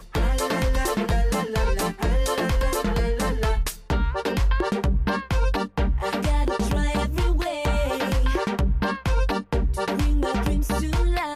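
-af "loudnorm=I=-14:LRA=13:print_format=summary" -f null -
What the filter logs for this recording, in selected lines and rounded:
Input Integrated:    -24.6 LUFS
Input True Peak:     -12.9 dBTP
Input LRA:             0.3 LU
Input Threshold:     -34.6 LUFS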